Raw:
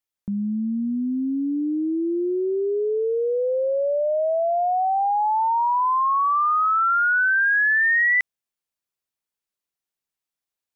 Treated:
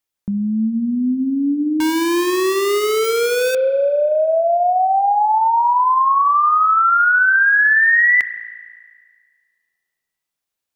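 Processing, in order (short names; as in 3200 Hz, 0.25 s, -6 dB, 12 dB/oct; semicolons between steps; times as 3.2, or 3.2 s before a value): 1.8–3.55 Schmitt trigger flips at -30 dBFS; spring tank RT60 1.8 s, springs 32 ms, chirp 75 ms, DRR 12 dB; gain +5.5 dB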